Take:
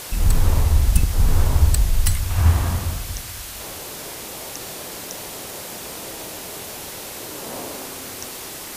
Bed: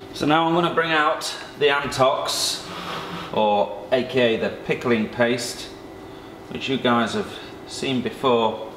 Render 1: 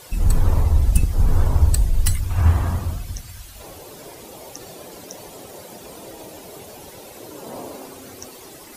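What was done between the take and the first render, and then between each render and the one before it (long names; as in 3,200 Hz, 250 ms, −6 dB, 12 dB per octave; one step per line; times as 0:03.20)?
broadband denoise 12 dB, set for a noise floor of −34 dBFS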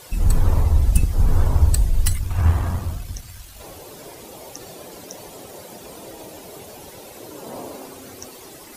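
0:02.06–0:03.60: gain on one half-wave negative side −3 dB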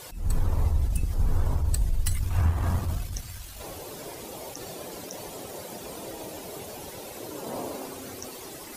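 downward compressor 6 to 1, threshold −19 dBFS, peak gain reduction 11 dB
level that may rise only so fast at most 110 dB per second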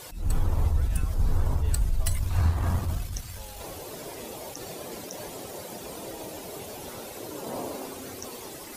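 mix in bed −29.5 dB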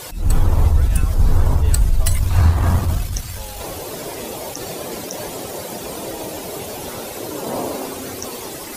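level +10 dB
brickwall limiter −3 dBFS, peak gain reduction 1.5 dB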